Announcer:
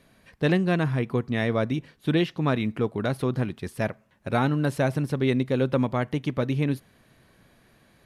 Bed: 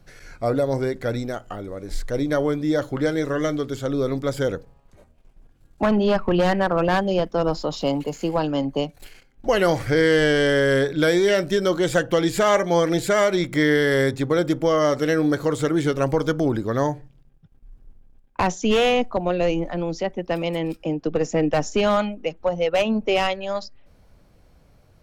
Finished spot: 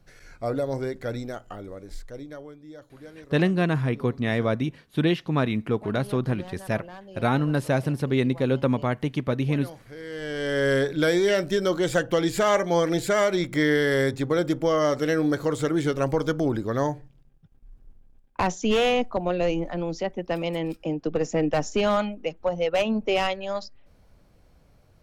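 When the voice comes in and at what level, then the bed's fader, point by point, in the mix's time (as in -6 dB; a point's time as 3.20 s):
2.90 s, +0.5 dB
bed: 1.72 s -5.5 dB
2.56 s -22.5 dB
9.98 s -22.5 dB
10.66 s -3 dB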